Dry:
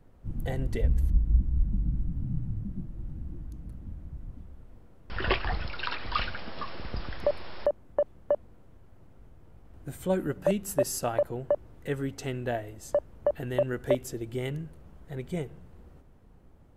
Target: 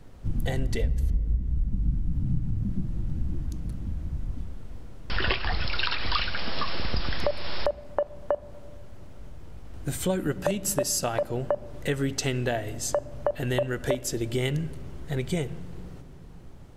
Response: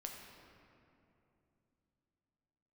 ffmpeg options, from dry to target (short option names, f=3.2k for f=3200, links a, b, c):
-filter_complex "[0:a]equalizer=f=5.2k:w=0.48:g=9.5,acompressor=threshold=-31dB:ratio=5,asplit=2[a][b];[1:a]atrim=start_sample=2205,lowshelf=f=390:g=11[c];[b][c]afir=irnorm=-1:irlink=0,volume=-14dB[d];[a][d]amix=inputs=2:normalize=0,volume=6dB"